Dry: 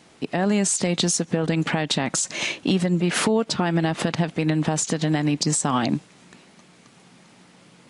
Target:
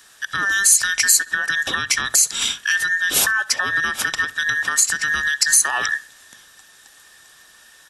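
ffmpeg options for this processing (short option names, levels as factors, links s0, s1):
-filter_complex "[0:a]afftfilt=real='real(if(between(b,1,1012),(2*floor((b-1)/92)+1)*92-b,b),0)':imag='imag(if(between(b,1,1012),(2*floor((b-1)/92)+1)*92-b,b),0)*if(between(b,1,1012),-1,1)':win_size=2048:overlap=0.75,bandreject=f=50:t=h:w=6,bandreject=f=100:t=h:w=6,bandreject=f=150:t=h:w=6,bandreject=f=200:t=h:w=6,asplit=2[s0][s1];[s1]adelay=65,lowpass=f=2800:p=1,volume=0.112,asplit=2[s2][s3];[s3]adelay=65,lowpass=f=2800:p=1,volume=0.41,asplit=2[s4][s5];[s5]adelay=65,lowpass=f=2800:p=1,volume=0.41[s6];[s0][s2][s4][s6]amix=inputs=4:normalize=0,acrossover=split=540[s7][s8];[s8]crystalizer=i=3.5:c=0[s9];[s7][s9]amix=inputs=2:normalize=0,volume=0.75"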